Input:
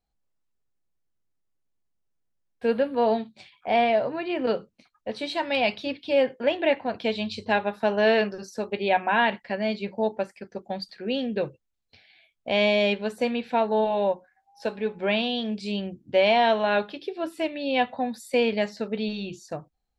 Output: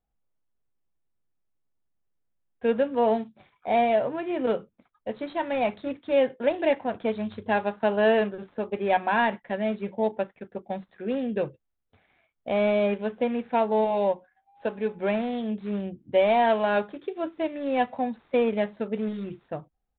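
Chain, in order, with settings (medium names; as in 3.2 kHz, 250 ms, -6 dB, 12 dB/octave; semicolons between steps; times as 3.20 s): median filter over 15 samples; resampled via 8 kHz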